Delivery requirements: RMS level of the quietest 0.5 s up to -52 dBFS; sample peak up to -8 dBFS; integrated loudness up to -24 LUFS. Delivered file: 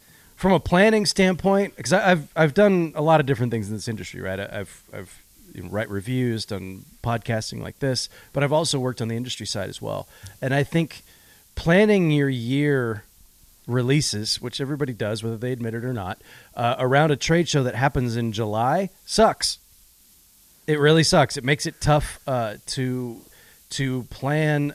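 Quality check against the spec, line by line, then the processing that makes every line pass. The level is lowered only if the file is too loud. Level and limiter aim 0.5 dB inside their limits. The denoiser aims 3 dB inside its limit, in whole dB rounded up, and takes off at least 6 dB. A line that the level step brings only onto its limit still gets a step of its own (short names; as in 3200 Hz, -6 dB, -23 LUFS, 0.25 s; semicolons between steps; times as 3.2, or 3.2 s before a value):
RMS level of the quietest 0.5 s -55 dBFS: OK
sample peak -5.0 dBFS: fail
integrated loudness -22.5 LUFS: fail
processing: gain -2 dB; limiter -8.5 dBFS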